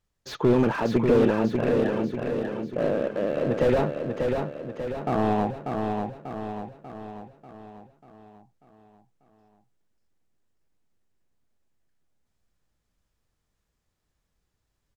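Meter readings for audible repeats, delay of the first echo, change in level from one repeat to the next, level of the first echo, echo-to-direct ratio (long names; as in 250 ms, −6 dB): 6, 591 ms, −5.5 dB, −4.5 dB, −3.0 dB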